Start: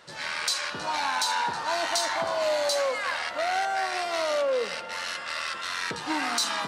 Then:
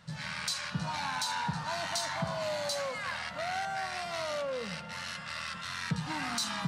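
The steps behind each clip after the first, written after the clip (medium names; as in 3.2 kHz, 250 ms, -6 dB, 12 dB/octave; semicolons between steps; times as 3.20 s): resonant low shelf 240 Hz +13 dB, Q 3; trim -6.5 dB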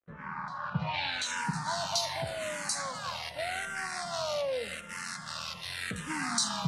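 crossover distortion -50.5 dBFS; low-pass sweep 1 kHz -> 10 kHz, 0.55–1.47 s; barber-pole phaser -0.85 Hz; trim +4.5 dB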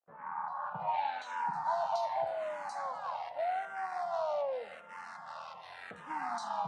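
band-pass filter 800 Hz, Q 4.1; trim +7.5 dB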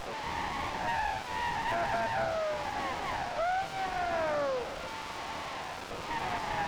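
one-bit delta coder 32 kbps, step -37 dBFS; overdrive pedal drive 17 dB, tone 2.3 kHz, clips at -21.5 dBFS; sliding maximum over 17 samples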